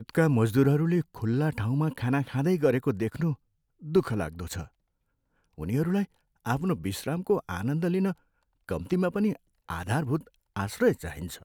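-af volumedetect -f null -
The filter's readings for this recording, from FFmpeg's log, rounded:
mean_volume: -28.1 dB
max_volume: -10.4 dB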